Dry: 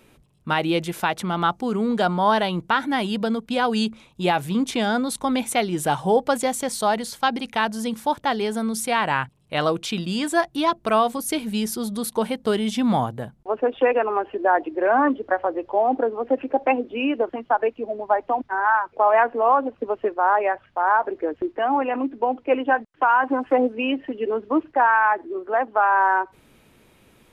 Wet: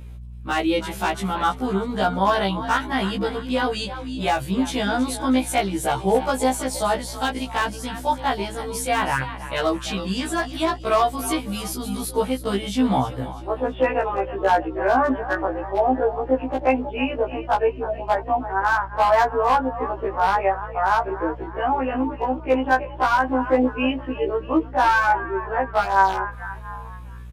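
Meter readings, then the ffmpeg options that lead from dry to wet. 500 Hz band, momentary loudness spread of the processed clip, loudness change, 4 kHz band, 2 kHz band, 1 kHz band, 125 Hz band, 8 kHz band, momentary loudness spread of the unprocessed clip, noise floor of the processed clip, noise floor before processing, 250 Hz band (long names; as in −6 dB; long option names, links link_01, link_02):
−0.5 dB, 8 LU, 0.0 dB, 0.0 dB, 0.0 dB, 0.0 dB, +2.5 dB, 0.0 dB, 7 LU, −36 dBFS, −57 dBFS, 0.0 dB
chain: -filter_complex "[0:a]asplit=5[link_01][link_02][link_03][link_04][link_05];[link_02]adelay=322,afreqshift=40,volume=-13dB[link_06];[link_03]adelay=644,afreqshift=80,volume=-20.3dB[link_07];[link_04]adelay=966,afreqshift=120,volume=-27.7dB[link_08];[link_05]adelay=1288,afreqshift=160,volume=-35dB[link_09];[link_01][link_06][link_07][link_08][link_09]amix=inputs=5:normalize=0,aeval=exprs='0.316*(abs(mod(val(0)/0.316+3,4)-2)-1)':channel_layout=same,aeval=exprs='val(0)+0.0112*(sin(2*PI*60*n/s)+sin(2*PI*2*60*n/s)/2+sin(2*PI*3*60*n/s)/3+sin(2*PI*4*60*n/s)/4+sin(2*PI*5*60*n/s)/5)':channel_layout=same,afftfilt=real='re*1.73*eq(mod(b,3),0)':imag='im*1.73*eq(mod(b,3),0)':win_size=2048:overlap=0.75,volume=2dB"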